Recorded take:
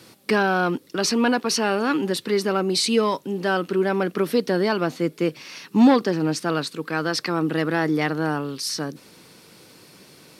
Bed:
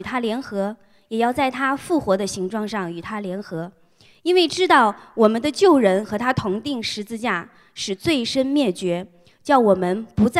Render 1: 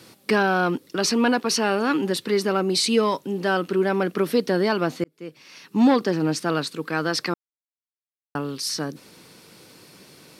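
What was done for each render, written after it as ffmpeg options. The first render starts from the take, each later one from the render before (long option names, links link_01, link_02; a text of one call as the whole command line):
ffmpeg -i in.wav -filter_complex "[0:a]asplit=4[link_01][link_02][link_03][link_04];[link_01]atrim=end=5.04,asetpts=PTS-STARTPTS,afade=type=out:start_time=5.036:duration=0.004:curve=hsin[link_05];[link_02]atrim=start=5.04:end=7.34,asetpts=PTS-STARTPTS,afade=type=in:duration=1.08,afade=type=out:start_time=2.296:duration=0.004:curve=hsin[link_06];[link_03]atrim=start=7.34:end=8.35,asetpts=PTS-STARTPTS,volume=0[link_07];[link_04]atrim=start=8.35,asetpts=PTS-STARTPTS,afade=type=in:duration=0.004:curve=hsin[link_08];[link_05][link_06][link_07][link_08]concat=n=4:v=0:a=1" out.wav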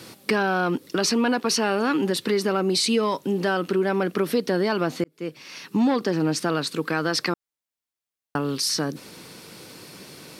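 ffmpeg -i in.wav -filter_complex "[0:a]asplit=2[link_01][link_02];[link_02]alimiter=limit=-18.5dB:level=0:latency=1:release=160,volume=-1dB[link_03];[link_01][link_03]amix=inputs=2:normalize=0,acompressor=threshold=-22dB:ratio=2" out.wav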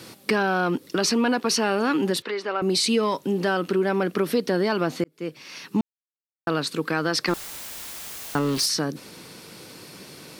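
ffmpeg -i in.wav -filter_complex "[0:a]asettb=1/sr,asplit=3[link_01][link_02][link_03];[link_01]atrim=end=2.224[link_04];[link_02]atrim=start=2.22:end=2.62,asetpts=PTS-STARTPTS,afade=type=in:duration=0.004:curve=qsin,afade=type=out:start_time=0.396:duration=0.004:curve=qsin,highpass=540,lowpass=3300[link_05];[link_03]atrim=start=2.616[link_06];[link_04][link_05]acrossfade=duration=0.004:curve1=hsin:curve2=qsin[link_07];[link_07][link_06]acrossfade=duration=0.004:curve1=qsin:curve2=hsin,asettb=1/sr,asplit=3[link_08][link_09][link_10];[link_08]atrim=end=7.284[link_11];[link_09]atrim=start=7.28:end=8.66,asetpts=PTS-STARTPTS,afade=type=in:duration=0.004:curve=qsin,afade=type=out:start_time=1.376:duration=0.004:curve=qsin,aeval=exprs='val(0)+0.5*0.0422*sgn(val(0))':channel_layout=same[link_12];[link_10]atrim=start=8.656[link_13];[link_11][link_12]acrossfade=duration=0.004:curve1=hsin:curve2=qsin[link_14];[link_14][link_13]acrossfade=duration=0.004:curve1=qsin:curve2=hsin,asplit=3[link_15][link_16][link_17];[link_15]atrim=end=5.81,asetpts=PTS-STARTPTS,afade=type=out:start_time=5.806:duration=0.004:curve=hsin[link_18];[link_16]atrim=start=5.81:end=6.47,asetpts=PTS-STARTPTS,volume=0[link_19];[link_17]atrim=start=6.47,asetpts=PTS-STARTPTS,afade=type=in:duration=0.004:curve=hsin[link_20];[link_18][link_19][link_20]concat=n=3:v=0:a=1" out.wav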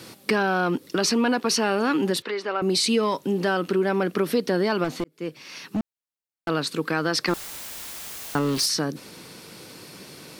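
ffmpeg -i in.wav -filter_complex "[0:a]asettb=1/sr,asplit=3[link_01][link_02][link_03];[link_01]atrim=end=4.844[link_04];[link_02]atrim=start=4.84:end=6.49,asetpts=PTS-STARTPTS,afade=type=in:duration=0.004:curve=qsin,afade=type=out:start_time=1.646:duration=0.004:curve=qsin,volume=21.5dB,asoftclip=hard,volume=-21.5dB[link_05];[link_03]atrim=start=6.486[link_06];[link_04][link_05]acrossfade=duration=0.004:curve1=hsin:curve2=qsin[link_07];[link_07][link_06]acrossfade=duration=0.004:curve1=qsin:curve2=hsin" out.wav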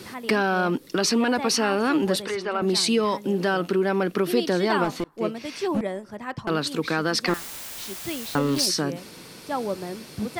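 ffmpeg -i in.wav -i bed.wav -filter_complex "[1:a]volume=-13dB[link_01];[0:a][link_01]amix=inputs=2:normalize=0" out.wav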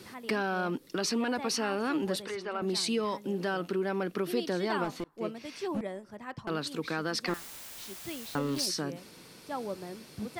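ffmpeg -i in.wav -af "volume=-8.5dB" out.wav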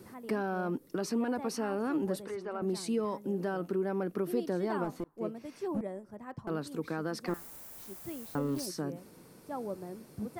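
ffmpeg -i in.wav -af "equalizer=frequency=3500:width=0.54:gain=-14.5" out.wav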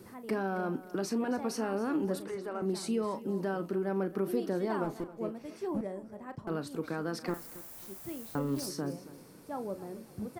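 ffmpeg -i in.wav -filter_complex "[0:a]asplit=2[link_01][link_02];[link_02]adelay=36,volume=-12.5dB[link_03];[link_01][link_03]amix=inputs=2:normalize=0,aecho=1:1:271|542|813:0.141|0.0424|0.0127" out.wav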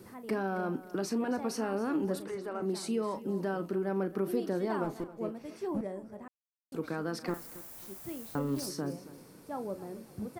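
ffmpeg -i in.wav -filter_complex "[0:a]asettb=1/sr,asplit=3[link_01][link_02][link_03];[link_01]atrim=end=2.604[link_04];[link_02]atrim=start=2.6:end=3.17,asetpts=PTS-STARTPTS,afade=type=in:duration=0.004:curve=qsin,afade=type=out:start_time=0.566:duration=0.004:curve=qsin,highpass=160[link_05];[link_03]atrim=start=3.166[link_06];[link_04][link_05]acrossfade=duration=0.004:curve1=hsin:curve2=qsin[link_07];[link_07][link_06]acrossfade=duration=0.004:curve1=qsin:curve2=hsin,asplit=3[link_08][link_09][link_10];[link_08]atrim=end=6.28,asetpts=PTS-STARTPTS,afade=type=out:start_time=6.276:duration=0.004:curve=hsin[link_11];[link_09]atrim=start=6.28:end=6.72,asetpts=PTS-STARTPTS,volume=0[link_12];[link_10]atrim=start=6.72,asetpts=PTS-STARTPTS,afade=type=in:duration=0.004:curve=hsin[link_13];[link_11][link_12][link_13]concat=n=3:v=0:a=1" out.wav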